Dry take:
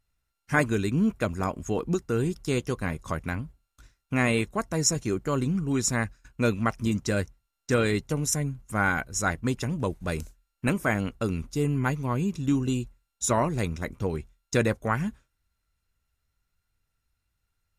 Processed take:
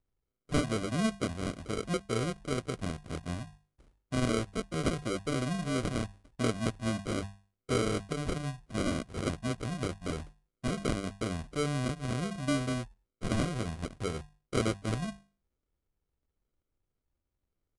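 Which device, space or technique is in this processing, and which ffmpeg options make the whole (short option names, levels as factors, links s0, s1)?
crushed at another speed: -af "bandreject=f=50:t=h:w=6,bandreject=f=100:t=h:w=6,bandreject=f=150:t=h:w=6,bandreject=f=200:t=h:w=6,asetrate=88200,aresample=44100,acrusher=samples=25:mix=1:aa=0.000001,asetrate=22050,aresample=44100,volume=0.531"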